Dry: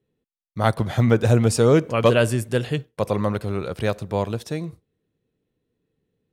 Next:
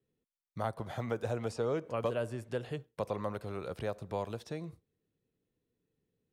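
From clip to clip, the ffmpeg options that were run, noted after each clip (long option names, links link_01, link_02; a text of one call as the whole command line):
ffmpeg -i in.wav -filter_complex "[0:a]acrossover=split=470|1200|6400[link_01][link_02][link_03][link_04];[link_01]acompressor=threshold=-32dB:ratio=4[link_05];[link_02]acompressor=threshold=-25dB:ratio=4[link_06];[link_03]acompressor=threshold=-43dB:ratio=4[link_07];[link_04]acompressor=threshold=-58dB:ratio=4[link_08];[link_05][link_06][link_07][link_08]amix=inputs=4:normalize=0,volume=-8dB" out.wav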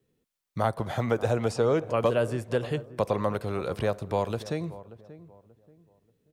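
ffmpeg -i in.wav -filter_complex "[0:a]asplit=2[link_01][link_02];[link_02]adelay=583,lowpass=frequency=1100:poles=1,volume=-16dB,asplit=2[link_03][link_04];[link_04]adelay=583,lowpass=frequency=1100:poles=1,volume=0.32,asplit=2[link_05][link_06];[link_06]adelay=583,lowpass=frequency=1100:poles=1,volume=0.32[link_07];[link_01][link_03][link_05][link_07]amix=inputs=4:normalize=0,volume=9dB" out.wav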